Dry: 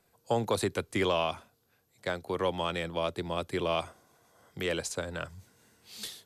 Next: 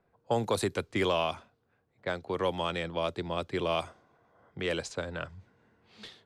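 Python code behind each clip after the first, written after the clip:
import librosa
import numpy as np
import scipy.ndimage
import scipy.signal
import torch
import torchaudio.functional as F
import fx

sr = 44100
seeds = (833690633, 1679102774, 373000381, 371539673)

y = fx.env_lowpass(x, sr, base_hz=1600.0, full_db=-24.5)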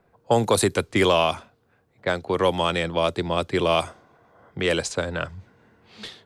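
y = fx.dynamic_eq(x, sr, hz=9600.0, q=1.1, threshold_db=-58.0, ratio=4.0, max_db=6)
y = F.gain(torch.from_numpy(y), 9.0).numpy()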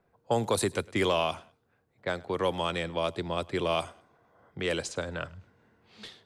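y = fx.echo_feedback(x, sr, ms=104, feedback_pct=28, wet_db=-23.5)
y = F.gain(torch.from_numpy(y), -7.5).numpy()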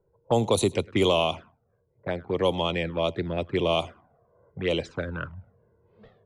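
y = fx.env_flanger(x, sr, rest_ms=2.1, full_db=-25.5)
y = fx.env_lowpass(y, sr, base_hz=580.0, full_db=-23.5)
y = F.gain(torch.from_numpy(y), 6.0).numpy()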